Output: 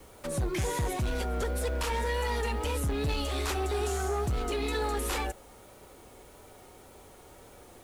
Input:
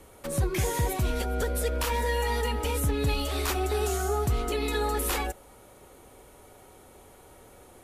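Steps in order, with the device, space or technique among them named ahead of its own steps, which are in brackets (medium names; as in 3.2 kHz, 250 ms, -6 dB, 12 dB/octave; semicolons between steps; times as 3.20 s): compact cassette (saturation -24.5 dBFS, distortion -15 dB; low-pass 10 kHz 12 dB/octave; wow and flutter; white noise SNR 31 dB)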